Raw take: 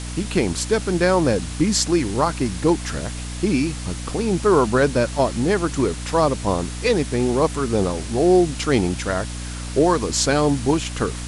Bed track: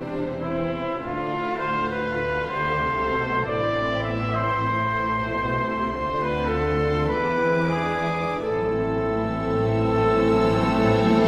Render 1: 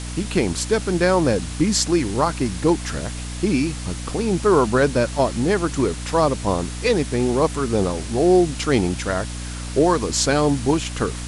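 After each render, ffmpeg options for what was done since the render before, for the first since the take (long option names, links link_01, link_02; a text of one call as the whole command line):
ffmpeg -i in.wav -af anull out.wav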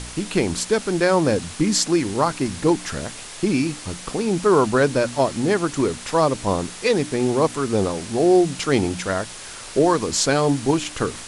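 ffmpeg -i in.wav -af "bandreject=frequency=60:width_type=h:width=4,bandreject=frequency=120:width_type=h:width=4,bandreject=frequency=180:width_type=h:width=4,bandreject=frequency=240:width_type=h:width=4,bandreject=frequency=300:width_type=h:width=4" out.wav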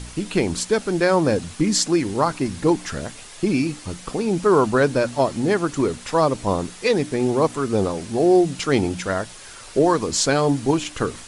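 ffmpeg -i in.wav -af "afftdn=noise_reduction=6:noise_floor=-37" out.wav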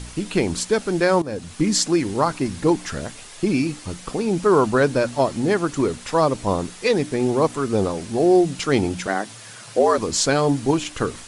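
ffmpeg -i in.wav -filter_complex "[0:a]asettb=1/sr,asplit=3[link_01][link_02][link_03];[link_01]atrim=end=9.074[link_04];[link_02]atrim=start=9.07:end=9.98,asetpts=PTS-STARTPTS,afade=type=in:duration=0.004:curve=qsin,afade=type=out:start_time=0.906:duration=0.004:curve=qsin,afreqshift=100[link_05];[link_03]atrim=start=9.976[link_06];[link_04][link_05]acrossfade=duration=0.004:curve1=hsin:curve2=qsin[link_07];[link_07][link_06]acrossfade=duration=0.004:curve1=qsin:curve2=hsin,asplit=2[link_08][link_09];[link_08]atrim=end=1.22,asetpts=PTS-STARTPTS,afade=type=out:start_time=1.216:duration=0.004:curve=hsin:silence=0.149624[link_10];[link_09]atrim=start=1.22,asetpts=PTS-STARTPTS,afade=type=in:duration=0.41:silence=0.149624[link_11];[link_10][link_11]concat=n=2:v=0:a=1" out.wav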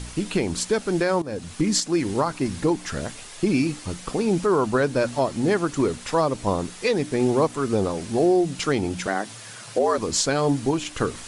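ffmpeg -i in.wav -af "areverse,acompressor=mode=upward:threshold=-35dB:ratio=2.5,areverse,alimiter=limit=-11dB:level=0:latency=1:release=304" out.wav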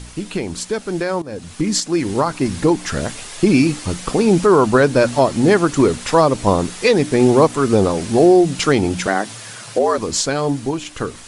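ffmpeg -i in.wav -af "dynaudnorm=framelen=630:gausssize=7:maxgain=10dB" out.wav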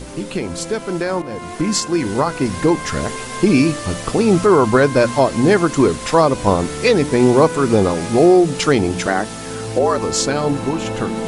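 ffmpeg -i in.wav -i bed.wav -filter_complex "[1:a]volume=-5.5dB[link_01];[0:a][link_01]amix=inputs=2:normalize=0" out.wav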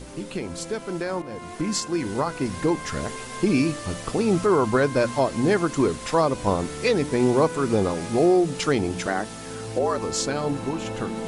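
ffmpeg -i in.wav -af "volume=-7.5dB" out.wav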